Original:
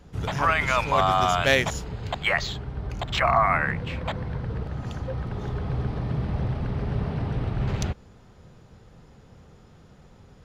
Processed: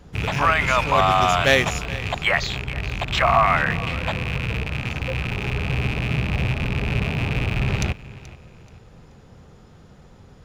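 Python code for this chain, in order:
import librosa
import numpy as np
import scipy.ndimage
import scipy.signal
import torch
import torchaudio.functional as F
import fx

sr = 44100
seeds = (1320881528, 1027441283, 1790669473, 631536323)

y = fx.rattle_buzz(x, sr, strikes_db=-33.0, level_db=-20.0)
y = fx.echo_feedback(y, sr, ms=430, feedback_pct=30, wet_db=-18.5)
y = y * 10.0 ** (3.5 / 20.0)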